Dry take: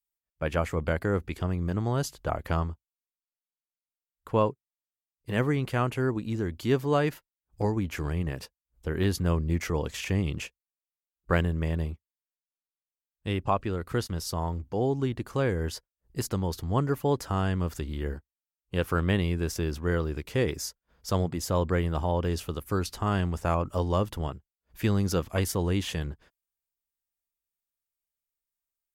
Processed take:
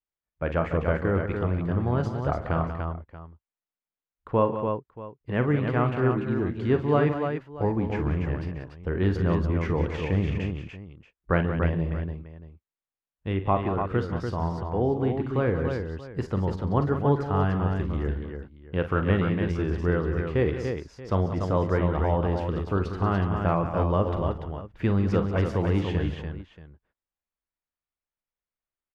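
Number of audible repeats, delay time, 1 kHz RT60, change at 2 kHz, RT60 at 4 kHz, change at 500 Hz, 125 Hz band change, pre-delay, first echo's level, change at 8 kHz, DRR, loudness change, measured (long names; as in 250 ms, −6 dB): 5, 41 ms, no reverb audible, +1.5 dB, no reverb audible, +3.5 dB, +3.5 dB, no reverb audible, −11.5 dB, below −15 dB, no reverb audible, +2.5 dB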